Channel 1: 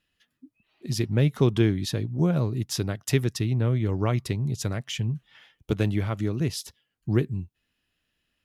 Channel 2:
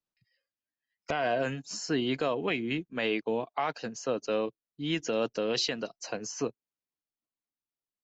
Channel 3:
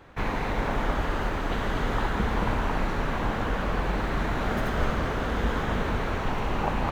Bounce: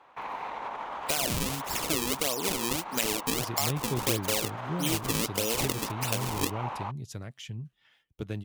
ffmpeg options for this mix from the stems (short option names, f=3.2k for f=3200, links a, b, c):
-filter_complex "[0:a]adelay=2500,volume=-11dB[a];[1:a]acrusher=samples=35:mix=1:aa=0.000001:lfo=1:lforange=56:lforate=1.6,volume=2dB[b];[2:a]alimiter=limit=-22.5dB:level=0:latency=1:release=31,bandpass=f=950:t=q:w=2.6:csg=0,volume=2dB[c];[b][c]amix=inputs=2:normalize=0,aexciter=amount=3.6:drive=4.8:freq=2.3k,acompressor=threshold=-26dB:ratio=3,volume=0dB[d];[a][d]amix=inputs=2:normalize=0"